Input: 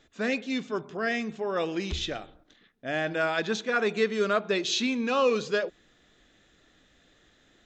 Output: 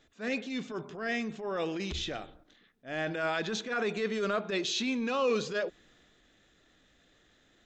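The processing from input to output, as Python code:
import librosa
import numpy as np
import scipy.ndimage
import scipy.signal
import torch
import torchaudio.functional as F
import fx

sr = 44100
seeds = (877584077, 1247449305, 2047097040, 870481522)

y = fx.transient(x, sr, attack_db=-10, sustain_db=3)
y = y * 10.0 ** (-3.0 / 20.0)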